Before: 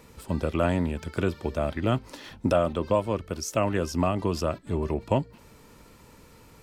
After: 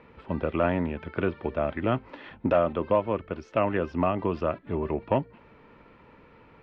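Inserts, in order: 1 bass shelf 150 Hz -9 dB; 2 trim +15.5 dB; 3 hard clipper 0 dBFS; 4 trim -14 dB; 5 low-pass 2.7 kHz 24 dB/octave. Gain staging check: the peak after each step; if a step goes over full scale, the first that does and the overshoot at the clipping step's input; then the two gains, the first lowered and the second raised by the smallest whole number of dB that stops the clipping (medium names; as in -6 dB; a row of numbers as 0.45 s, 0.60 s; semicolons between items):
-12.5 dBFS, +3.0 dBFS, 0.0 dBFS, -14.0 dBFS, -13.0 dBFS; step 2, 3.0 dB; step 2 +12.5 dB, step 4 -11 dB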